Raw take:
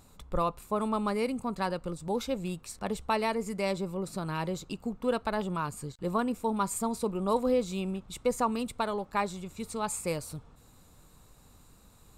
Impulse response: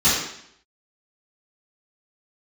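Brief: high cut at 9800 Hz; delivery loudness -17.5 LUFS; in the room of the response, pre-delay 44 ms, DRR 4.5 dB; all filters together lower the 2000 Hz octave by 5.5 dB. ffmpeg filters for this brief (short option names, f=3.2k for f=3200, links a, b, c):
-filter_complex "[0:a]lowpass=9.8k,equalizer=f=2k:t=o:g=-7.5,asplit=2[a][b];[1:a]atrim=start_sample=2205,adelay=44[c];[b][c]afir=irnorm=-1:irlink=0,volume=-23.5dB[d];[a][d]amix=inputs=2:normalize=0,volume=13.5dB"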